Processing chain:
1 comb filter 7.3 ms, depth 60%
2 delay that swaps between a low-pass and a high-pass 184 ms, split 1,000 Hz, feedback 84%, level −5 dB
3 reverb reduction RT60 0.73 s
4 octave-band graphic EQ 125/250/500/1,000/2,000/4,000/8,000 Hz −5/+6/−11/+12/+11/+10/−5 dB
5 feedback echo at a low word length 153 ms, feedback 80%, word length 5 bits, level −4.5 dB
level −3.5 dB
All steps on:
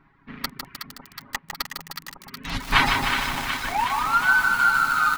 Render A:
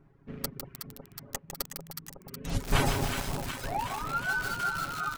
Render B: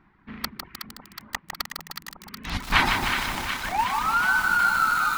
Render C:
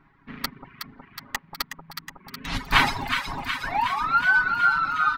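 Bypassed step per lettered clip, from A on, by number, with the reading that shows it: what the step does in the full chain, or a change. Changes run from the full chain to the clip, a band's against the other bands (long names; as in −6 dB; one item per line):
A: 4, change in crest factor −1.5 dB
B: 1, change in integrated loudness −2.0 LU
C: 5, change in crest factor +1.5 dB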